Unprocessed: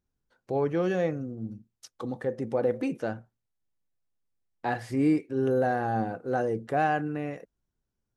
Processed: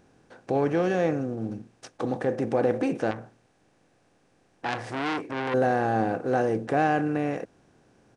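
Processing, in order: spectral levelling over time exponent 0.6; resampled via 22.05 kHz; 3.11–5.54 s: transformer saturation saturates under 2.4 kHz

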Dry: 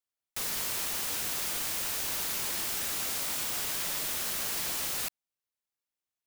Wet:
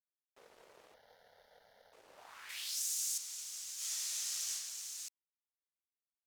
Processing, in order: peaking EQ 150 Hz -12 dB 2.5 oct; band-pass sweep 480 Hz -> 6.5 kHz, 2.12–2.81 s; 2.49–3.18 s: treble shelf 5.1 kHz +11.5 dB; 3.75–4.51 s: reverb throw, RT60 1.4 s, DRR -7.5 dB; crossover distortion -59 dBFS; 0.94–1.93 s: static phaser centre 1.7 kHz, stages 8; trim -3 dB

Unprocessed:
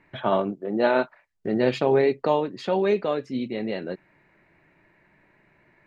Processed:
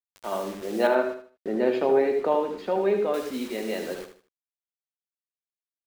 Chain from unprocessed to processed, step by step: fade-in on the opening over 0.76 s; Bessel high-pass 300 Hz, order 6; reverberation, pre-delay 68 ms, DRR 9.5 dB; bit crusher 7-bit; 0.87–3.14 s: low-pass 1.3 kHz 6 dB/octave; feedback delay 77 ms, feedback 30%, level -9 dB

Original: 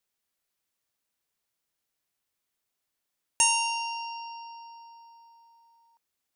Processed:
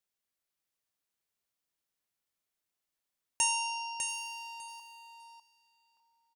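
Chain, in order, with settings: 4.08–4.80 s: waveshaping leveller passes 3; on a send: feedback delay 600 ms, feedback 15%, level -6.5 dB; on the sum: trim -6 dB

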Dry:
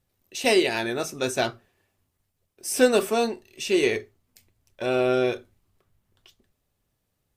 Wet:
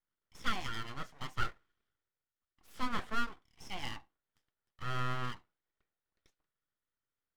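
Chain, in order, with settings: vowel filter a; full-wave rectifier

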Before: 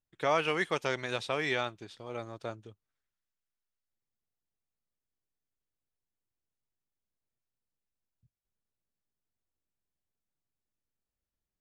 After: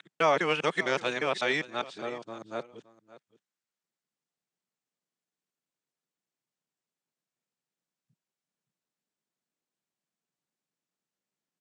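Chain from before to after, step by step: time reversed locally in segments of 202 ms; elliptic band-pass 160–8200 Hz; delay 569 ms -18 dB; trim +4 dB

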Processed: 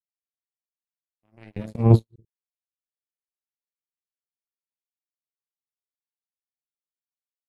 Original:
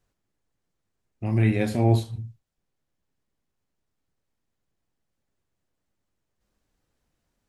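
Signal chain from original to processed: 1.56–2.25 s: resonant low shelf 260 Hz +10 dB, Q 3; power-law waveshaper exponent 3; trim -1 dB

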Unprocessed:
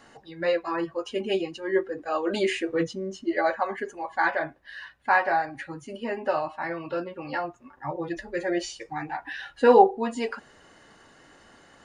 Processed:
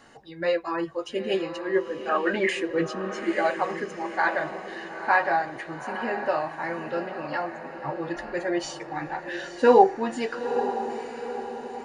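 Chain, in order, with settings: 2.09–2.49 s: resonant low-pass 1.8 kHz, resonance Q 11; echo that smears into a reverb 909 ms, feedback 50%, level -9 dB

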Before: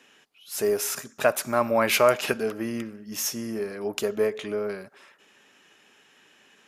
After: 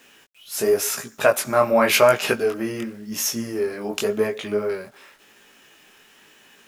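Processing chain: word length cut 10-bit, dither none; chorus 0.92 Hz, delay 17 ms, depth 6.5 ms; trim +7.5 dB

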